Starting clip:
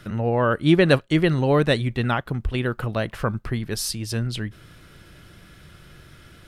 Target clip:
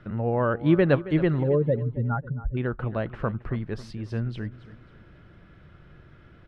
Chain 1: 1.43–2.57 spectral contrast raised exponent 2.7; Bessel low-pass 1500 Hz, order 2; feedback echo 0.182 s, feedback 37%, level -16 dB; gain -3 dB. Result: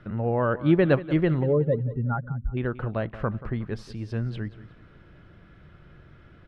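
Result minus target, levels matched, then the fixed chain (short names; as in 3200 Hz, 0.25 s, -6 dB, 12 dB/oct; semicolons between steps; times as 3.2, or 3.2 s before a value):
echo 90 ms early
1.43–2.57 spectral contrast raised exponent 2.7; Bessel low-pass 1500 Hz, order 2; feedback echo 0.272 s, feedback 37%, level -16 dB; gain -3 dB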